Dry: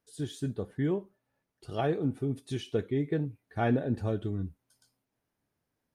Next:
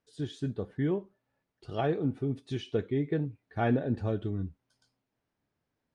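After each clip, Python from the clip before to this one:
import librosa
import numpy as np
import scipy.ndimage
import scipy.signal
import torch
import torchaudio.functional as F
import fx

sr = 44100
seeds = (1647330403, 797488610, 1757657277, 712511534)

y = scipy.signal.sosfilt(scipy.signal.butter(2, 5100.0, 'lowpass', fs=sr, output='sos'), x)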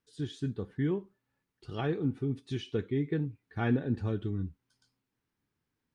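y = fx.peak_eq(x, sr, hz=630.0, db=-11.0, octaves=0.6)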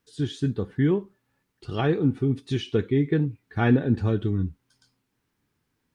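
y = fx.wow_flutter(x, sr, seeds[0], rate_hz=2.1, depth_cents=23.0)
y = y * 10.0 ** (8.5 / 20.0)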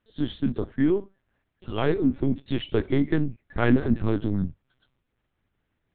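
y = fx.lpc_vocoder(x, sr, seeds[1], excitation='pitch_kept', order=8)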